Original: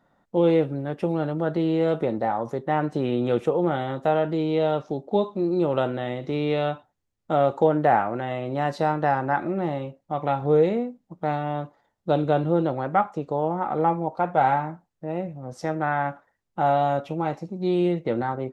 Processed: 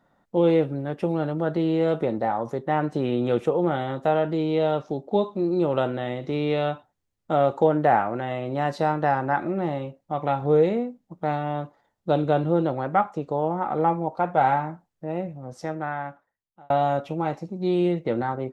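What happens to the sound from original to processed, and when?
15.24–16.7 fade out

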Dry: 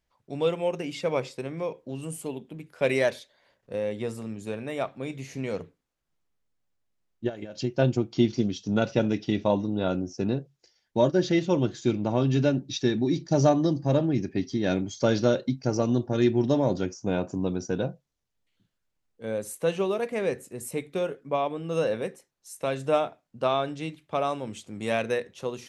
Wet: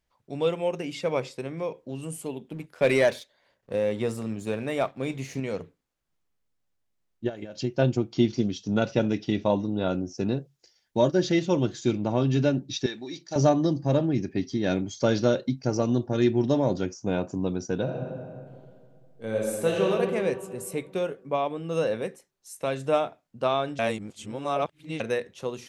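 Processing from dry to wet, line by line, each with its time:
2.48–5.4 sample leveller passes 1
10.15–11.98 high shelf 5700 Hz +5.5 dB
12.86–13.36 HPF 1300 Hz 6 dB/oct
17.82–19.88 reverb throw, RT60 2.2 s, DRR -2.5 dB
23.79–25 reverse

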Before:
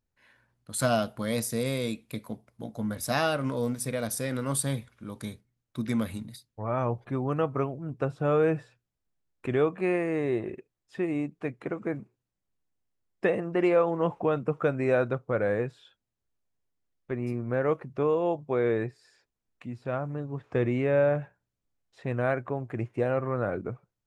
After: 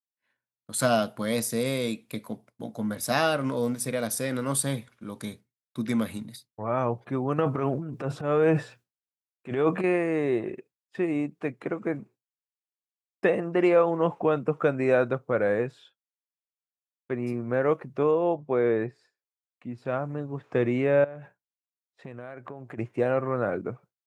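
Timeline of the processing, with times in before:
7.38–9.84 transient shaper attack -11 dB, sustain +10 dB
18.11–19.78 high shelf 3800 Hz -10.5 dB
21.04–22.78 compressor 16:1, threshold -37 dBFS
whole clip: expander -49 dBFS; HPF 140 Hz; gain +2.5 dB

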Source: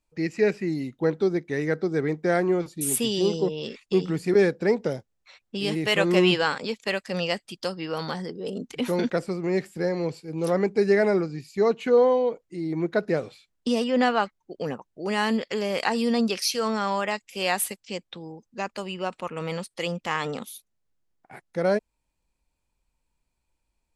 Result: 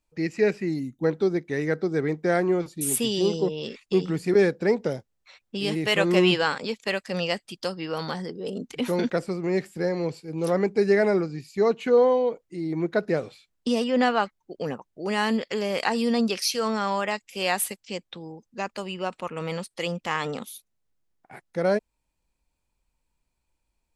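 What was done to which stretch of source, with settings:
0.8–1.04 spectral gain 340–5600 Hz -11 dB

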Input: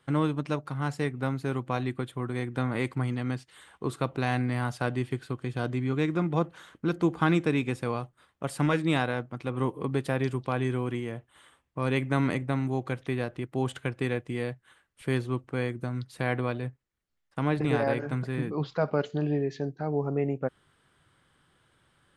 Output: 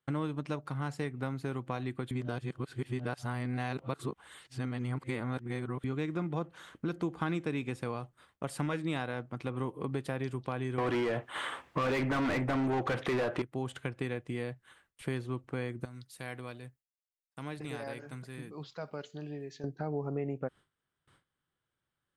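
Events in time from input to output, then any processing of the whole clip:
2.11–5.84 reverse
10.78–13.42 overdrive pedal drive 34 dB, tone 1500 Hz, clips at -11.5 dBFS
15.85–19.64 pre-emphasis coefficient 0.8
whole clip: gate with hold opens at -53 dBFS; compressor 2.5:1, threshold -34 dBFS

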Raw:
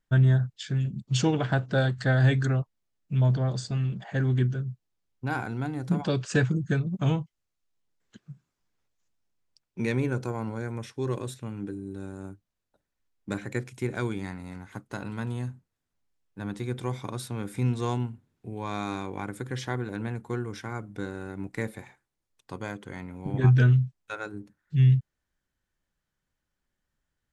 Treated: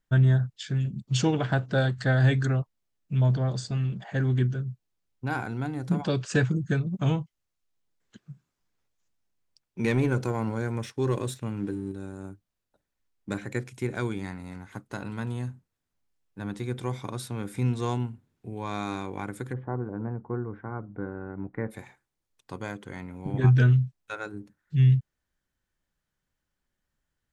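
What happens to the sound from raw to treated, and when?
9.84–11.92 sample leveller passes 1
19.52–21.7 LPF 1100 Hz -> 1700 Hz 24 dB/oct

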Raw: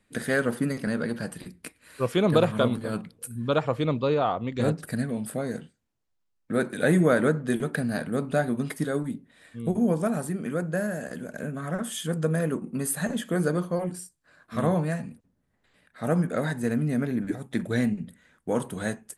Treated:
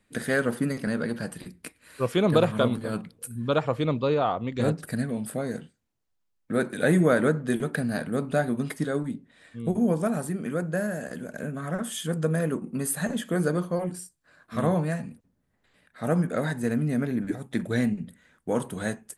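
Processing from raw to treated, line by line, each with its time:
8.76–9.68 LPF 8600 Hz

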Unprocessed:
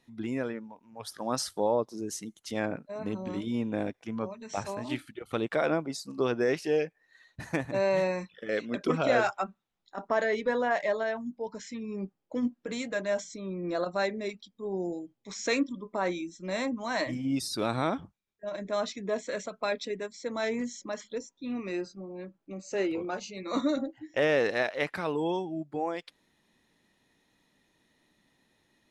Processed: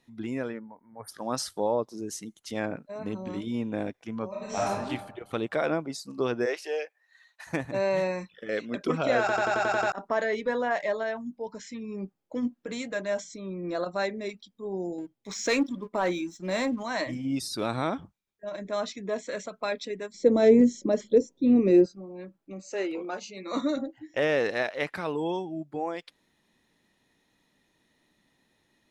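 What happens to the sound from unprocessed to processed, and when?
0.59–1.09 spectral delete 2300–8600 Hz
4.28–4.68 reverb throw, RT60 1.2 s, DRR -6 dB
6.45–7.46 HPF 390 Hz -> 850 Hz 24 dB/oct
9.2 stutter in place 0.09 s, 8 plays
14.98–16.83 sample leveller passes 1
20.14–21.86 resonant low shelf 710 Hz +13 dB, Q 1.5
22.7–23.6 HPF 340 Hz -> 150 Hz

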